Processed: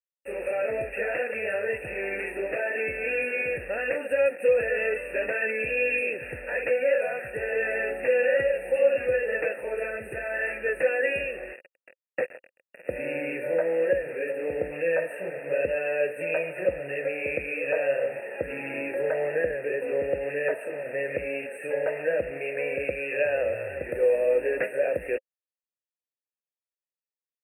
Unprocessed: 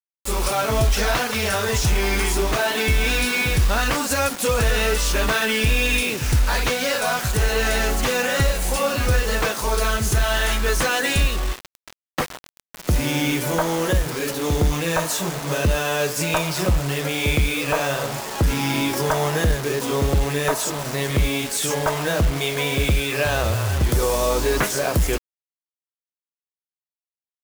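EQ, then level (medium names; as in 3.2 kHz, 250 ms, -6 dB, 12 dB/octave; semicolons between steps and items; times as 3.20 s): vowel filter e; brick-wall FIR band-stop 2.8–8.1 kHz; +5.5 dB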